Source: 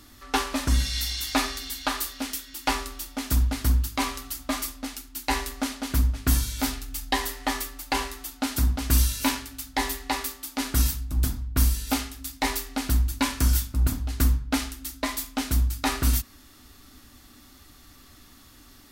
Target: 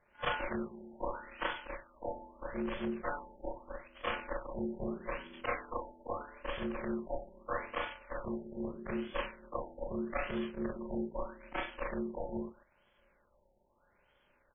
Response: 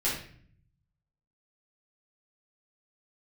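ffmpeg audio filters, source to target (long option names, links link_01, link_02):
-filter_complex "[0:a]afftfilt=real='re':imag='-im':win_size=4096:overlap=0.75,highpass=frequency=300:poles=1,aeval=exprs='val(0)+0.000501*sin(2*PI*5200*n/s)':channel_layout=same,asplit=2[link_01][link_02];[link_02]adelay=74,lowpass=frequency=2500:poles=1,volume=-20dB,asplit=2[link_03][link_04];[link_04]adelay=74,lowpass=frequency=2500:poles=1,volume=0.17[link_05];[link_01][link_03][link_05]amix=inputs=3:normalize=0,atempo=1.3,asoftclip=type=tanh:threshold=-24dB,agate=range=-8dB:threshold=-51dB:ratio=16:detection=peak,aeval=exprs='val(0)*sin(2*PI*290*n/s)':channel_layout=same,afftfilt=real='re*lt(b*sr/1024,890*pow(3500/890,0.5+0.5*sin(2*PI*0.79*pts/sr)))':imag='im*lt(b*sr/1024,890*pow(3500/890,0.5+0.5*sin(2*PI*0.79*pts/sr)))':win_size=1024:overlap=0.75,volume=3dB"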